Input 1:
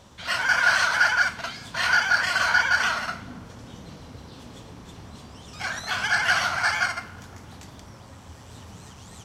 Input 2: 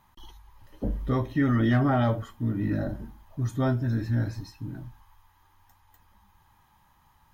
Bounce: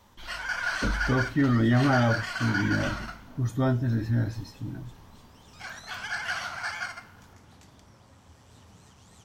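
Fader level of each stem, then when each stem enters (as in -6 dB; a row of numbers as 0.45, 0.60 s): -10.0, +0.5 dB; 0.00, 0.00 s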